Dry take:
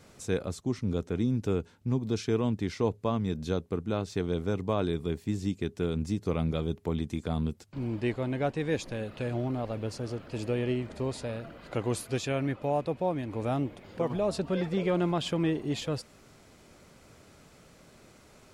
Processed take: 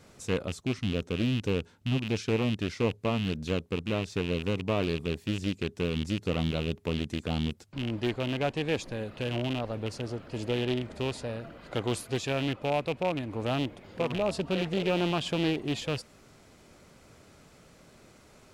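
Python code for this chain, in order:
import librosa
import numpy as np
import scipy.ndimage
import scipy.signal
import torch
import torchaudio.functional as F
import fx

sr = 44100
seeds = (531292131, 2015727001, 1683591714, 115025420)

y = fx.rattle_buzz(x, sr, strikes_db=-32.0, level_db=-25.0)
y = fx.doppler_dist(y, sr, depth_ms=0.39)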